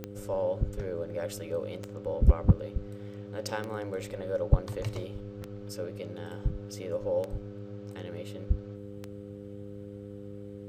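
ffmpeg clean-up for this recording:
-af "adeclick=t=4,bandreject=f=101.5:t=h:w=4,bandreject=f=203:t=h:w=4,bandreject=f=304.5:t=h:w=4,bandreject=f=406:t=h:w=4,bandreject=f=507.5:t=h:w=4"

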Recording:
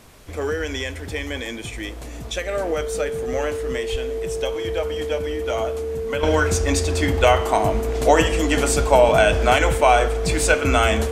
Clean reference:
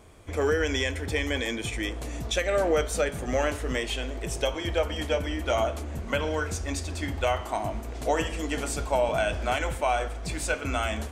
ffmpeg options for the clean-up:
-filter_complex "[0:a]bandreject=f=450:w=30,asplit=3[a][b][c];[a]afade=t=out:st=3.91:d=0.02[d];[b]highpass=f=140:w=0.5412,highpass=f=140:w=1.3066,afade=t=in:st=3.91:d=0.02,afade=t=out:st=4.03:d=0.02[e];[c]afade=t=in:st=4.03:d=0.02[f];[d][e][f]amix=inputs=3:normalize=0,agate=range=-21dB:threshold=-23dB,asetnsamples=n=441:p=0,asendcmd='6.23 volume volume -10.5dB',volume=0dB"

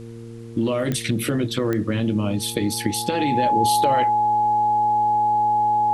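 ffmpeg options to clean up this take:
-af "adeclick=t=4,bandreject=f=115.5:t=h:w=4,bandreject=f=231:t=h:w=4,bandreject=f=346.5:t=h:w=4,bandreject=f=462:t=h:w=4,bandreject=f=840:w=30,agate=range=-21dB:threshold=-26dB"

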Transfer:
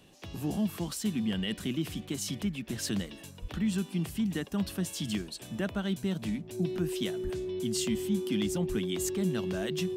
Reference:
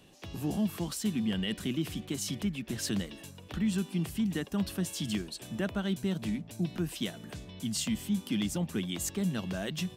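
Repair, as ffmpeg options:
-filter_complex "[0:a]bandreject=f=370:w=30,asplit=3[a][b][c];[a]afade=t=out:st=3.41:d=0.02[d];[b]highpass=f=140:w=0.5412,highpass=f=140:w=1.3066,afade=t=in:st=3.41:d=0.02,afade=t=out:st=3.53:d=0.02[e];[c]afade=t=in:st=3.53:d=0.02[f];[d][e][f]amix=inputs=3:normalize=0,asplit=3[g][h][i];[g]afade=t=out:st=7.23:d=0.02[j];[h]highpass=f=140:w=0.5412,highpass=f=140:w=1.3066,afade=t=in:st=7.23:d=0.02,afade=t=out:st=7.35:d=0.02[k];[i]afade=t=in:st=7.35:d=0.02[l];[j][k][l]amix=inputs=3:normalize=0,asplit=3[m][n][o];[m]afade=t=out:st=8.68:d=0.02[p];[n]highpass=f=140:w=0.5412,highpass=f=140:w=1.3066,afade=t=in:st=8.68:d=0.02,afade=t=out:st=8.8:d=0.02[q];[o]afade=t=in:st=8.8:d=0.02[r];[p][q][r]amix=inputs=3:normalize=0"

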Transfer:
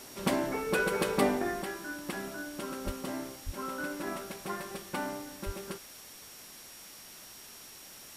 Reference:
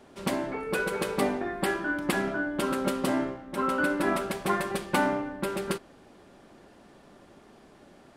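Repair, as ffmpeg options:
-filter_complex "[0:a]bandreject=f=5.6k:w=30,asplit=3[a][b][c];[a]afade=t=out:st=2.85:d=0.02[d];[b]highpass=f=140:w=0.5412,highpass=f=140:w=1.3066,afade=t=in:st=2.85:d=0.02,afade=t=out:st=2.97:d=0.02[e];[c]afade=t=in:st=2.97:d=0.02[f];[d][e][f]amix=inputs=3:normalize=0,asplit=3[g][h][i];[g]afade=t=out:st=3.45:d=0.02[j];[h]highpass=f=140:w=0.5412,highpass=f=140:w=1.3066,afade=t=in:st=3.45:d=0.02,afade=t=out:st=3.57:d=0.02[k];[i]afade=t=in:st=3.57:d=0.02[l];[j][k][l]amix=inputs=3:normalize=0,asplit=3[m][n][o];[m]afade=t=out:st=5.45:d=0.02[p];[n]highpass=f=140:w=0.5412,highpass=f=140:w=1.3066,afade=t=in:st=5.45:d=0.02,afade=t=out:st=5.57:d=0.02[q];[o]afade=t=in:st=5.57:d=0.02[r];[p][q][r]amix=inputs=3:normalize=0,afwtdn=0.0035,asetnsamples=n=441:p=0,asendcmd='1.62 volume volume 10.5dB',volume=0dB"

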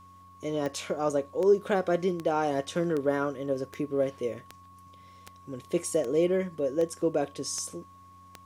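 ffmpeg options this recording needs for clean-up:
-af "adeclick=t=4,bandreject=f=91.6:t=h:w=4,bandreject=f=183.2:t=h:w=4,bandreject=f=274.8:t=h:w=4,bandreject=f=1.1k:w=30"

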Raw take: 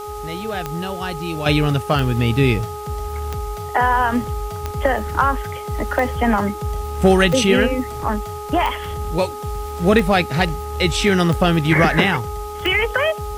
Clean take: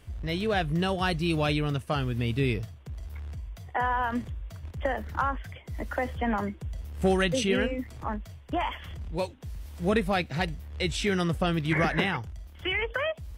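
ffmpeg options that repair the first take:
-af "adeclick=t=4,bandreject=f=417.2:t=h:w=4,bandreject=f=834.4:t=h:w=4,bandreject=f=1.2516k:t=h:w=4,afwtdn=0.0071,asetnsamples=n=441:p=0,asendcmd='1.46 volume volume -10.5dB',volume=0dB"

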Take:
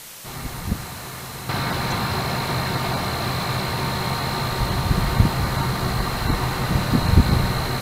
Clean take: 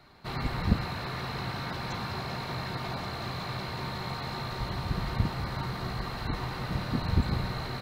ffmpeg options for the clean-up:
-af "afwtdn=0.013,asetnsamples=n=441:p=0,asendcmd='1.49 volume volume -11dB',volume=0dB"

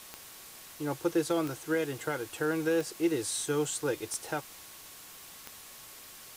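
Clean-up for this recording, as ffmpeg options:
-af "adeclick=t=4,bandreject=f=1.1k:w=30,afwtdn=0.004"

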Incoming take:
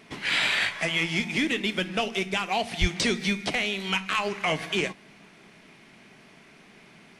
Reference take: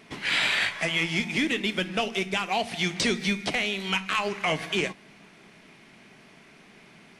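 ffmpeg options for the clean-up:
-filter_complex "[0:a]asplit=3[a][b][c];[a]afade=t=out:st=2.8:d=0.02[d];[b]highpass=f=140:w=0.5412,highpass=f=140:w=1.3066,afade=t=in:st=2.8:d=0.02,afade=t=out:st=2.92:d=0.02[e];[c]afade=t=in:st=2.92:d=0.02[f];[d][e][f]amix=inputs=3:normalize=0"

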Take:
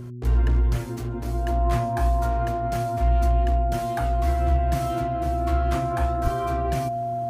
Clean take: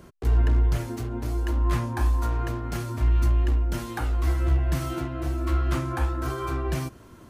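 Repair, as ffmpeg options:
-filter_complex "[0:a]bandreject=f=121.7:t=h:w=4,bandreject=f=243.4:t=h:w=4,bandreject=f=365.1:t=h:w=4,bandreject=f=690:w=30,asplit=3[a][b][c];[a]afade=t=out:st=6.23:d=0.02[d];[b]highpass=f=140:w=0.5412,highpass=f=140:w=1.3066,afade=t=in:st=6.23:d=0.02,afade=t=out:st=6.35:d=0.02[e];[c]afade=t=in:st=6.35:d=0.02[f];[d][e][f]amix=inputs=3:normalize=0"

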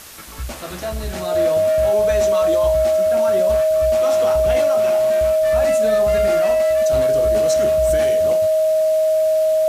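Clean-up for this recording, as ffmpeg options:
-af "bandreject=f=630:w=30,afwtdn=0.013"

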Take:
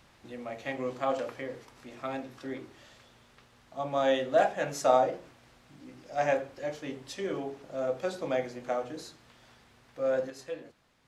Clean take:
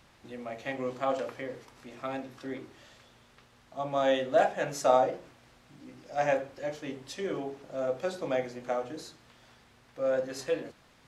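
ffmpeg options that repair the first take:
-af "asetnsamples=n=441:p=0,asendcmd='10.3 volume volume 8dB',volume=0dB"

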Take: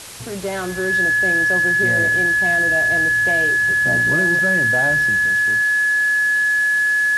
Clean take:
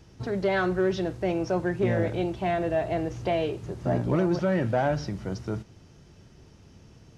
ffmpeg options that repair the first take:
-af "bandreject=f=1.7k:w=30,afwtdn=0.02,asetnsamples=n=441:p=0,asendcmd='5.26 volume volume 6.5dB',volume=0dB"

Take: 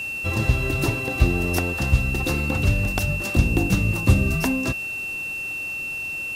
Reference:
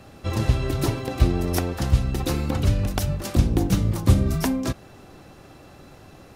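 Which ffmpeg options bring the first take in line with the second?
-af "adeclick=t=4,bandreject=f=2.7k:w=30,afwtdn=0.005"

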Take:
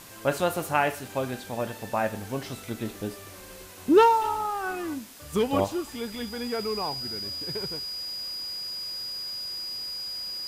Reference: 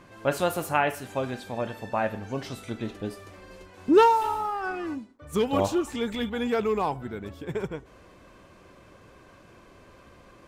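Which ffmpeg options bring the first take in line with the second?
-af "adeclick=t=4,bandreject=f=4.9k:w=30,afwtdn=0.0045,asetnsamples=n=441:p=0,asendcmd='5.64 volume volume 5dB',volume=0dB"

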